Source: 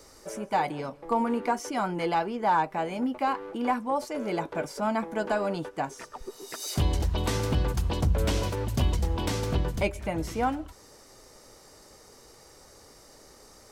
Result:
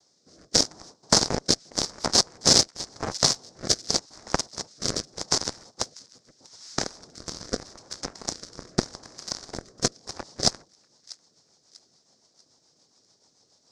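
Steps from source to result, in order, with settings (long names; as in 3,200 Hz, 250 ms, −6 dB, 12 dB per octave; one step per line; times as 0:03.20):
cochlear-implant simulation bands 2
harmonic generator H 3 −9 dB, 5 −43 dB, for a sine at −10 dBFS
high shelf with overshoot 3,800 Hz +11.5 dB, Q 3
rotating-speaker cabinet horn 0.85 Hz, later 7 Hz, at 0:10.07
high-frequency loss of the air 130 metres
on a send: delay with a high-pass on its return 643 ms, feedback 34%, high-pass 1,900 Hz, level −24 dB
on the sum: boost into a limiter +20.5 dB
level −1 dB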